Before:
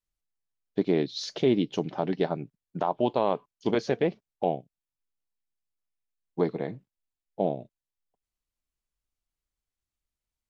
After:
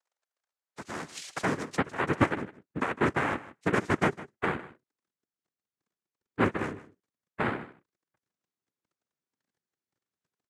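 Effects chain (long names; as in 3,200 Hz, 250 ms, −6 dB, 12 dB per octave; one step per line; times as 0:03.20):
Butterworth low-pass 3,800 Hz
in parallel at −2 dB: downward compressor, threshold −33 dBFS, peak gain reduction 14 dB
on the sum: surface crackle 15 per second −50 dBFS
high-pass filter sweep 1,200 Hz → 270 Hz, 0:00.31–0:02.64
cochlear-implant simulation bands 3
on a send: single-tap delay 156 ms −17.5 dB
on the sum: level −6 dB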